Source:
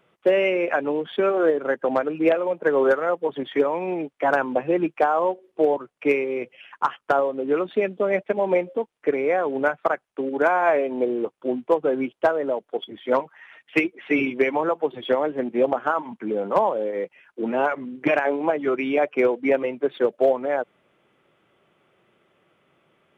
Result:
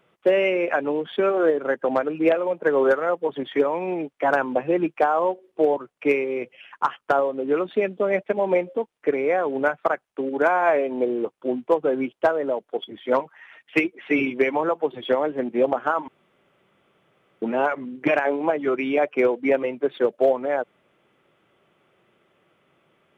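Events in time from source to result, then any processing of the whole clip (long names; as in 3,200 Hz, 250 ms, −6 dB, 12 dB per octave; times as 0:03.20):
0:16.08–0:17.42: fill with room tone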